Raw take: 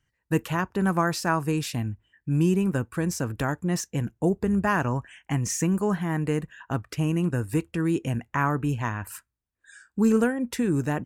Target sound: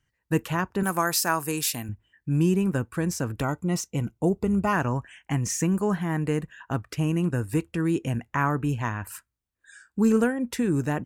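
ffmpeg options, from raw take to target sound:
-filter_complex "[0:a]asettb=1/sr,asplit=3[a][b][c];[a]atrim=end=0.834[d];[b]atrim=start=0.83:end=1.89,asetpts=PTS-STARTPTS,afade=t=in:d=0.004:c=qsin,afade=t=out:st=1.056:d=0.004:c=qsin,aemphasis=mode=production:type=bsi[e];[c]atrim=start=1.886[f];[d][e]acrossfade=d=0.004:c1=hsin:c2=qsin[g];[g][f]acrossfade=d=0.004:c1=qsin:c2=hsin,asettb=1/sr,asplit=3[h][i][j];[h]atrim=end=3.414[k];[i]atrim=start=3.41:end=4.73,asetpts=PTS-STARTPTS,afade=t=in:d=0.004:c=qsin,afade=t=out:st=1.316:d=0.004:c=qsin,asuperstop=centerf=1700:order=8:qfactor=4.9[l];[j]atrim=start=4.726[m];[k][l]acrossfade=d=0.004:c1=hsin:c2=qsin[n];[n][m]acrossfade=d=0.004:c1=qsin:c2=hsin"

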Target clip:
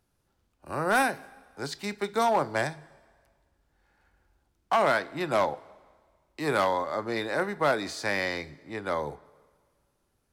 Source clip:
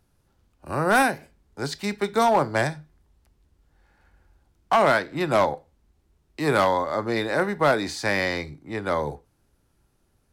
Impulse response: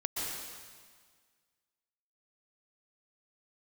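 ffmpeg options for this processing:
-filter_complex "[0:a]lowshelf=f=200:g=-6,asplit=2[a][b];[1:a]atrim=start_sample=2205[c];[b][c]afir=irnorm=-1:irlink=0,volume=-27.5dB[d];[a][d]amix=inputs=2:normalize=0,volume=-4.5dB"

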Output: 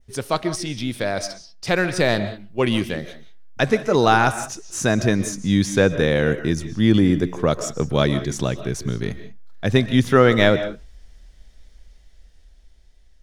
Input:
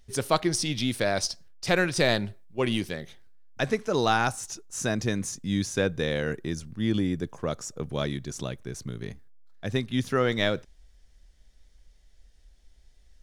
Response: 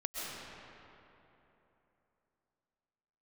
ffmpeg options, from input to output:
-filter_complex "[0:a]dynaudnorm=f=900:g=5:m=11.5dB,asplit=2[a][b];[1:a]atrim=start_sample=2205,afade=t=out:st=0.25:d=0.01,atrim=end_sample=11466,lowpass=5.9k[c];[b][c]afir=irnorm=-1:irlink=0,volume=-7dB[d];[a][d]amix=inputs=2:normalize=0,adynamicequalizer=threshold=0.0178:dfrequency=4000:dqfactor=0.92:tfrequency=4000:tqfactor=0.92:attack=5:release=100:ratio=0.375:range=3:mode=cutabove:tftype=bell,volume=-1dB"

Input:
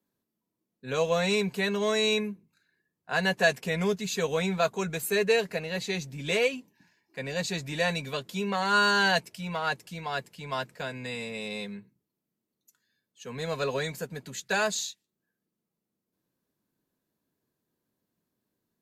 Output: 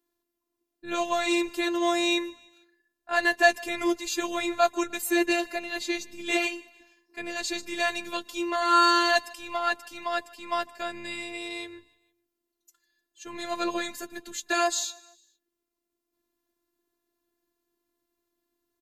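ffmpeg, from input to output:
-af "afftfilt=real='hypot(re,im)*cos(PI*b)':imag='0':win_size=512:overlap=0.75,aecho=1:1:152|304|456:0.0668|0.0334|0.0167,volume=5.5dB"

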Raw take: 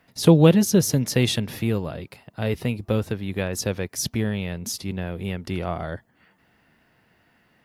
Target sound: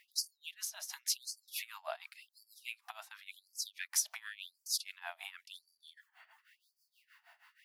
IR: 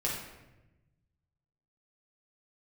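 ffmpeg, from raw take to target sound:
-af "acompressor=threshold=-28dB:ratio=12,tremolo=f=6.3:d=0.88,afftfilt=real='re*gte(b*sr/1024,600*pow(4500/600,0.5+0.5*sin(2*PI*0.92*pts/sr)))':imag='im*gte(b*sr/1024,600*pow(4500/600,0.5+0.5*sin(2*PI*0.92*pts/sr)))':win_size=1024:overlap=0.75,volume=3.5dB"

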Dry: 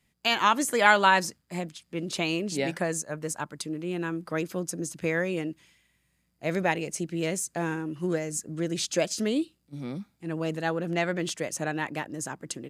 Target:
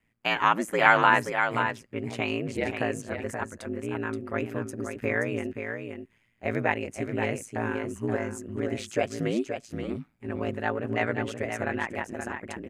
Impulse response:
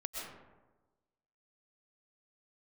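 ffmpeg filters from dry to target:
-af "highshelf=f=3.1k:t=q:w=1.5:g=-9.5,aeval=exprs='val(0)*sin(2*PI*56*n/s)':c=same,aecho=1:1:527:0.447,volume=2dB"

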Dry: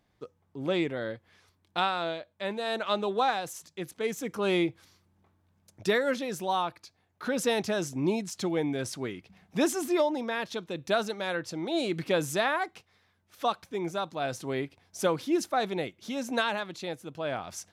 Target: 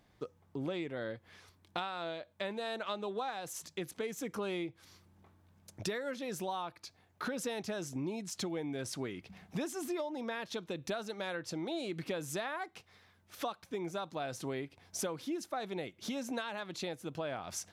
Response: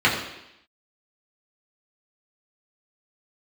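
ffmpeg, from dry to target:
-af "acompressor=threshold=-40dB:ratio=6,volume=4dB"

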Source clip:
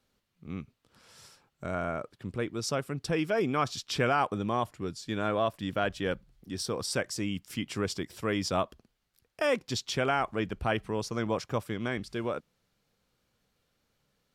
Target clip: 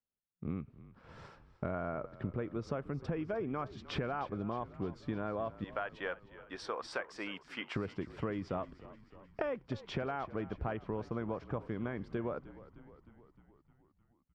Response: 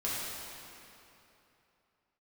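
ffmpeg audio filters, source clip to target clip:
-filter_complex "[0:a]asettb=1/sr,asplit=3[a][b][c];[a]atrim=end=5.644[d];[b]atrim=start=5.64:end=7.76,asetpts=PTS-STARTPTS,afade=t=in:d=0.004:c=qsin,afade=t=out:st=2.116:d=0.004:c=qsin,highpass=840[e];[c]atrim=start=7.756[f];[d][e]acrossfade=d=0.004:c1=hsin:c2=qsin[g];[g][f]acrossfade=d=0.004:c1=qsin:c2=hsin,agate=range=-33dB:threshold=-54dB:ratio=3:detection=peak,lowpass=1.5k,acompressor=threshold=-42dB:ratio=16,asplit=8[h][i][j][k][l][m][n][o];[i]adelay=307,afreqshift=-42,volume=-17dB[p];[j]adelay=614,afreqshift=-84,volume=-20.7dB[q];[k]adelay=921,afreqshift=-126,volume=-24.5dB[r];[l]adelay=1228,afreqshift=-168,volume=-28.2dB[s];[m]adelay=1535,afreqshift=-210,volume=-32dB[t];[n]adelay=1842,afreqshift=-252,volume=-35.7dB[u];[o]adelay=2149,afreqshift=-294,volume=-39.5dB[v];[h][p][q][r][s][t][u][v]amix=inputs=8:normalize=0,volume=8.5dB"

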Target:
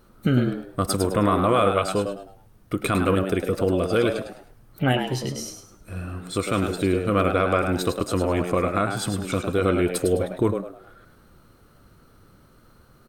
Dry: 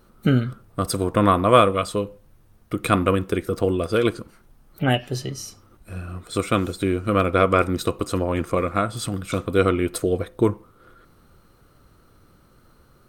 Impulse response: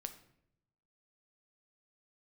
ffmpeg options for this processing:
-filter_complex "[0:a]alimiter=limit=-11dB:level=0:latency=1:release=34,asplit=5[a][b][c][d][e];[b]adelay=104,afreqshift=90,volume=-7dB[f];[c]adelay=208,afreqshift=180,volume=-17.5dB[g];[d]adelay=312,afreqshift=270,volume=-27.9dB[h];[e]adelay=416,afreqshift=360,volume=-38.4dB[i];[a][f][g][h][i]amix=inputs=5:normalize=0"

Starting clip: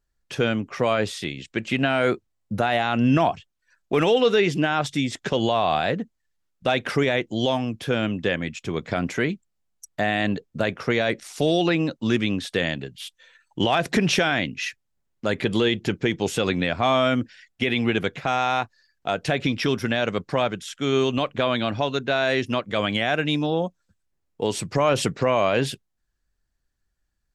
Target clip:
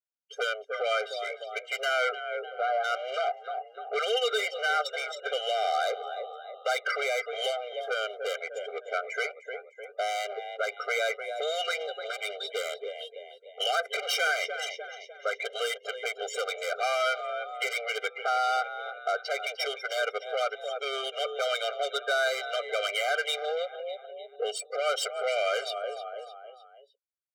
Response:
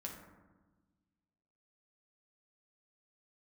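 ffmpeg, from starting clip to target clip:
-filter_complex "[0:a]asettb=1/sr,asplit=3[a][b][c];[a]atrim=end=2.094[d];[b]atrim=start=2.09:end=2.84,asetpts=PTS-STARTPTS,afade=t=in:d=0.004:c=qsin,afade=t=out:st=0.746:d=0.004:c=qsin,lowpass=1.2k[e];[c]atrim=start=2.836[f];[d][e]acrossfade=d=0.004:c1=hsin:c2=qsin[g];[g][f]acrossfade=d=0.004:c1=qsin:c2=hsin,afftdn=nr=25:nf=-31,asplit=5[h][i][j][k][l];[i]adelay=302,afreqshift=38,volume=-16dB[m];[j]adelay=604,afreqshift=76,volume=-22.9dB[n];[k]adelay=906,afreqshift=114,volume=-29.9dB[o];[l]adelay=1208,afreqshift=152,volume=-36.8dB[p];[h][m][n][o][p]amix=inputs=5:normalize=0,acrossover=split=240|890[q][r][s];[r]acompressor=threshold=-32dB:ratio=16[t];[q][t][s]amix=inputs=3:normalize=0,asoftclip=type=tanh:threshold=-26dB,acontrast=43,afftfilt=real='re*eq(mod(floor(b*sr/1024/400),2),1)':imag='im*eq(mod(floor(b*sr/1024/400),2),1)':win_size=1024:overlap=0.75"

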